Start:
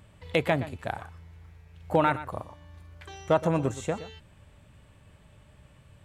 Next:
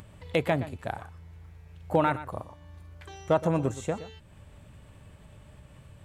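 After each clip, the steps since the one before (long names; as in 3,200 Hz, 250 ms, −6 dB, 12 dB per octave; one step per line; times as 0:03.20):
parametric band 2,600 Hz −3 dB 2.8 octaves
upward compression, threshold −43 dBFS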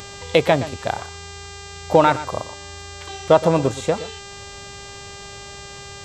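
octave-band graphic EQ 500/1,000/4,000 Hz +5/+4/+10 dB
hum with harmonics 400 Hz, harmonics 20, −44 dBFS −2 dB per octave
level +5.5 dB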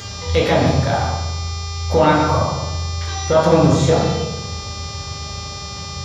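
brickwall limiter −10 dBFS, peak gain reduction 8.5 dB
convolution reverb RT60 1.1 s, pre-delay 3 ms, DRR −5 dB
level −3.5 dB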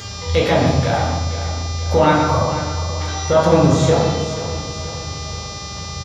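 repeating echo 479 ms, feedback 47%, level −12 dB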